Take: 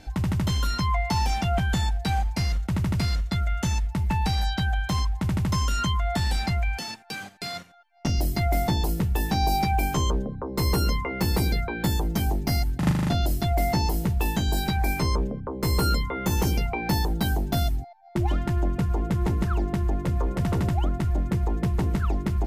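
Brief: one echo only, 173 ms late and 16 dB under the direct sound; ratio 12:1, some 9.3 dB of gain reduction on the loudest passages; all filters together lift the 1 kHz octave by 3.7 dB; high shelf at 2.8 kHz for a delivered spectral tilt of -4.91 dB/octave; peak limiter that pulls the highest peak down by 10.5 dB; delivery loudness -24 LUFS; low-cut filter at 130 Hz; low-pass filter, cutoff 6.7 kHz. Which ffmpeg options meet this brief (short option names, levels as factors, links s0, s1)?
-af "highpass=130,lowpass=6700,equalizer=f=1000:t=o:g=6,highshelf=f=2800:g=-7.5,acompressor=threshold=0.0282:ratio=12,alimiter=level_in=1.88:limit=0.0631:level=0:latency=1,volume=0.531,aecho=1:1:173:0.158,volume=5.01"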